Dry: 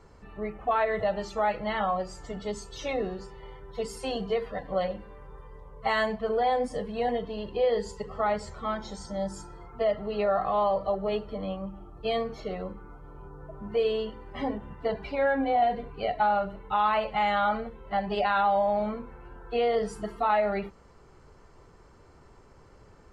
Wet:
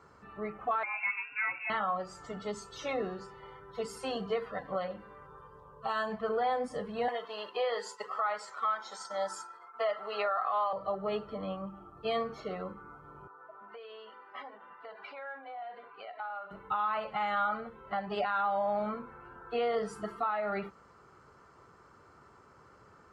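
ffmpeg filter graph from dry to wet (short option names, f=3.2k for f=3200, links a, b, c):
-filter_complex "[0:a]asettb=1/sr,asplit=3[a][b][c];[a]atrim=end=0.834[d];[b]atrim=start=0.83:end=1.7,asetpts=PTS-STARTPTS,afade=t=in:d=0.004:c=qsin,afade=t=out:st=0.866:d=0.004:c=qsin,highpass=f=58:p=1,equalizer=f=980:w=0.96:g=-5.5,lowpass=f=2.4k:t=q:w=0.5098,lowpass=f=2.4k:t=q:w=0.6013,lowpass=f=2.4k:t=q:w=0.9,lowpass=f=2.4k:t=q:w=2.563,afreqshift=-2800[e];[c]atrim=start=1.696[f];[d][e]acrossfade=d=0.004:c1=hsin:c2=qsin[g];[g][f]acrossfade=d=0.004:c1=qsin:c2=hsin,asettb=1/sr,asplit=3[h][i][j];[h]atrim=end=5.264[k];[i]atrim=start=5.26:end=6.12,asetpts=PTS-STARTPTS,afade=t=in:d=0.004:c=qsin,afade=t=out:st=0.856:d=0.004:c=qsin,acompressor=threshold=-29dB:ratio=2.5:attack=3.2:release=140:knee=1:detection=peak,asuperstop=centerf=2100:order=4:qfactor=3.3[l];[j]atrim=start=6.116[m];[k][l]acrossfade=d=0.004:c1=hsin:c2=qsin[n];[n][m]acrossfade=d=0.004:c1=qsin:c2=hsin,asettb=1/sr,asplit=3[o][p][q];[o]atrim=end=7.084[r];[p]atrim=start=7.08:end=10.73,asetpts=PTS-STARTPTS,afade=t=in:d=0.004:c=qsin,afade=t=out:st=3.646:d=0.004:c=qsin,agate=range=-33dB:threshold=-39dB:ratio=3:release=100:detection=peak,highpass=730,acontrast=80[s];[q]atrim=start=10.726[t];[r][s]acrossfade=d=0.004:c1=hsin:c2=qsin[u];[u][t]acrossfade=d=0.004:c1=qsin:c2=hsin,asettb=1/sr,asplit=3[v][w][x];[v]atrim=end=13.274[y];[w]atrim=start=13.27:end=16.51,asetpts=PTS-STARTPTS,afade=t=in:d=0.004:c=qsin,afade=t=out:st=3.236:d=0.004:c=qsin,acompressor=threshold=-34dB:ratio=8:attack=3.2:release=140:knee=1:detection=peak,highpass=670,lowpass=3.8k[z];[x]atrim=start=16.506[aa];[y][z]acrossfade=d=0.004:c1=hsin:c2=qsin[ab];[ab][aa]acrossfade=d=0.004:c1=qsin:c2=hsin,highpass=99,equalizer=f=1.3k:t=o:w=0.64:g=11,alimiter=limit=-18dB:level=0:latency=1:release=313,volume=-4.5dB"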